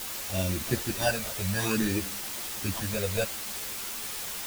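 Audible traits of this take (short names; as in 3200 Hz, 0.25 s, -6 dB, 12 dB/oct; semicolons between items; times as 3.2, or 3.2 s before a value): aliases and images of a low sample rate 2100 Hz, jitter 0%; phasing stages 12, 0.57 Hz, lowest notch 290–1600 Hz; a quantiser's noise floor 6-bit, dither triangular; a shimmering, thickened sound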